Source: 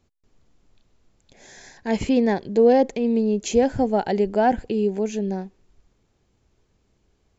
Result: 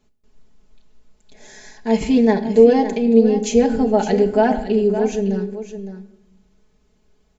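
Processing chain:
comb filter 4.7 ms, depth 92%
on a send: single-tap delay 561 ms −11 dB
on the sum: rectangular room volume 300 cubic metres, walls mixed, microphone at 0.37 metres

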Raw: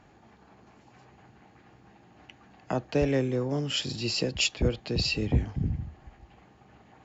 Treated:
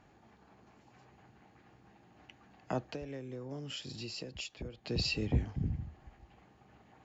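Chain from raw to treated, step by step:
0:02.82–0:04.85: downward compressor 10 to 1, threshold −34 dBFS, peak gain reduction 14.5 dB
level −5.5 dB

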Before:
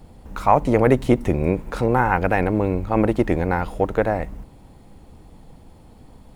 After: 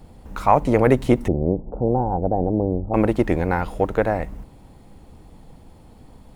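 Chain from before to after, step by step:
0:01.28–0:02.94: Chebyshev low-pass filter 770 Hz, order 4

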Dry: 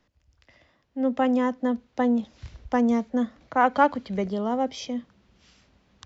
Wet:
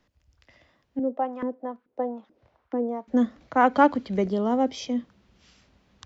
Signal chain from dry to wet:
dynamic equaliser 320 Hz, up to +6 dB, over −38 dBFS, Q 1.5
0:00.99–0:03.08: auto-filter band-pass saw up 2.3 Hz 340–1,500 Hz

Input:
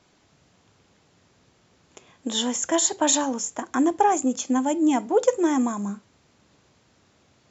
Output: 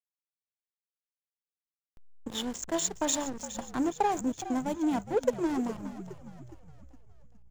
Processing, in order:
slack as between gear wheels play −21.5 dBFS
echo with shifted repeats 414 ms, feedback 48%, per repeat −59 Hz, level −13 dB
level −7 dB

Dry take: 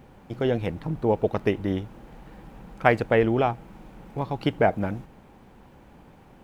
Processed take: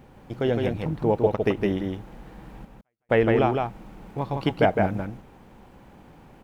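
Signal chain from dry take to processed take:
0:01.35–0:03.09: gate pattern "xxxx....xxx" 85 BPM −60 dB
on a send: single-tap delay 160 ms −3.5 dB

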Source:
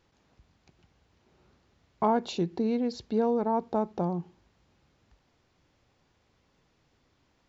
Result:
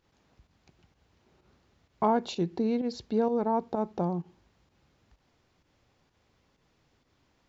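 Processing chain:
fake sidechain pumping 128 BPM, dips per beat 1, −9 dB, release 101 ms

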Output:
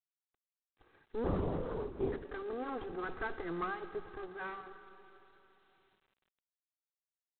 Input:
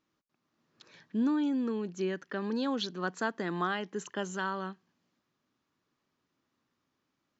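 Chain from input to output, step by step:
lower of the sound and its delayed copy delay 2.5 ms
low-pass filter 1,700 Hz 24 dB per octave
0:03.95–0:04.44: parametric band 1,000 Hz → 5,000 Hz −8 dB 1.1 octaves
mains-hum notches 60/120 Hz
0:02.81–0:03.39: transient designer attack +6 dB, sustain +10 dB
slap from a distant wall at 19 metres, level −25 dB
comb and all-pass reverb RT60 3.7 s, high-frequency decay 1×, pre-delay 15 ms, DRR 11.5 dB
0:01.24–0:02.25: linear-prediction vocoder at 8 kHz whisper
level −2 dB
G.726 24 kbit/s 8,000 Hz

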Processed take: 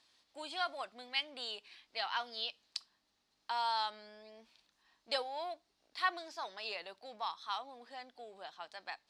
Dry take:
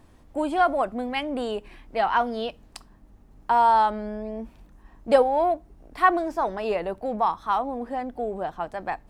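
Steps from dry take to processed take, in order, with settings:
resonant band-pass 4,300 Hz, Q 3
level +6 dB

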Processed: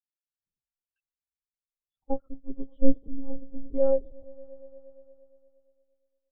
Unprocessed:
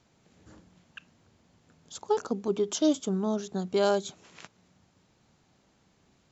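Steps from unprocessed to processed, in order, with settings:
echo that builds up and dies away 116 ms, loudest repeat 5, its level −14 dB
one-pitch LPC vocoder at 8 kHz 270 Hz
every bin expanded away from the loudest bin 2.5 to 1
level +7.5 dB

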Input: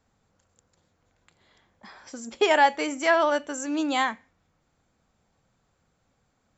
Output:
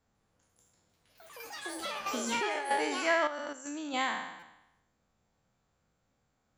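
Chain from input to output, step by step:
peak hold with a decay on every bin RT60 0.94 s
0:02.00–0:02.71: compressor whose output falls as the input rises −26 dBFS, ratio −1
delay with pitch and tempo change per echo 148 ms, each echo +6 semitones, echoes 3, each echo −6 dB
0:03.27–0:03.94: output level in coarse steps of 10 dB
buffer that repeats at 0:04.39, samples 256, times 5
level −8.5 dB

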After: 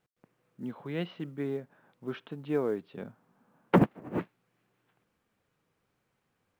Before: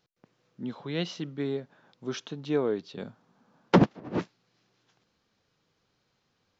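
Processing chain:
low-pass filter 2,700 Hz 24 dB per octave
log-companded quantiser 8 bits
level −2.5 dB

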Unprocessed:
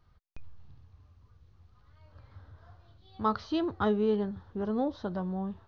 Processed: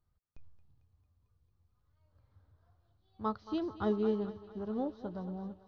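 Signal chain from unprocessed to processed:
parametric band 2,100 Hz −6 dB 2.4 octaves
feedback echo with a high-pass in the loop 224 ms, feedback 72%, high-pass 300 Hz, level −10 dB
expander for the loud parts 1.5 to 1, over −47 dBFS
level −2.5 dB

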